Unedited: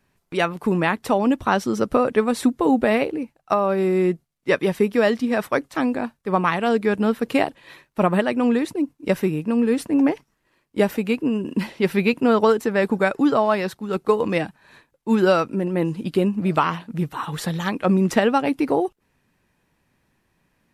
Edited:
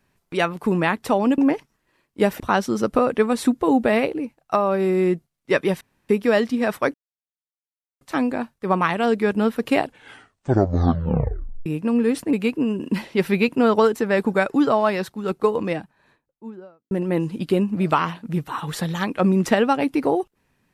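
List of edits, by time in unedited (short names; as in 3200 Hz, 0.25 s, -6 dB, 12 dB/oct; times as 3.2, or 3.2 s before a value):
4.79 insert room tone 0.28 s
5.64 insert silence 1.07 s
7.42 tape stop 1.87 s
9.96–10.98 move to 1.38
13.78–15.56 studio fade out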